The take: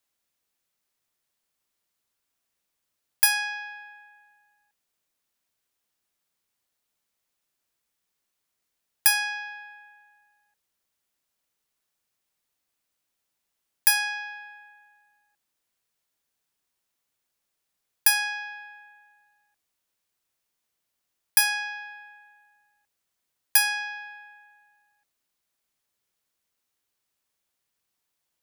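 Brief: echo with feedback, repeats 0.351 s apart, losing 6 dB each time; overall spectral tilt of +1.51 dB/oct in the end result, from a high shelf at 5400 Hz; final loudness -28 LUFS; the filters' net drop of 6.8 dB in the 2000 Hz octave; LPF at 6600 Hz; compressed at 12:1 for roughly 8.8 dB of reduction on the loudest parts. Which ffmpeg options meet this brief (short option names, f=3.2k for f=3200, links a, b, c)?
-af "lowpass=6.6k,equalizer=f=2k:t=o:g=-8,highshelf=f=5.4k:g=-7,acompressor=threshold=-33dB:ratio=12,aecho=1:1:351|702|1053|1404|1755|2106:0.501|0.251|0.125|0.0626|0.0313|0.0157,volume=12.5dB"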